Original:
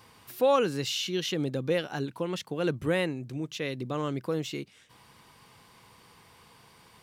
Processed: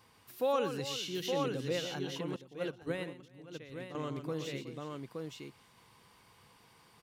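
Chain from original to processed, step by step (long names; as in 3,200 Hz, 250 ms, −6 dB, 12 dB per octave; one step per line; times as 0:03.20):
multi-tap delay 122/368/869 ms −8.5/−14/−3.5 dB
0:02.36–0:03.95: expander for the loud parts 2.5 to 1, over −35 dBFS
level −8 dB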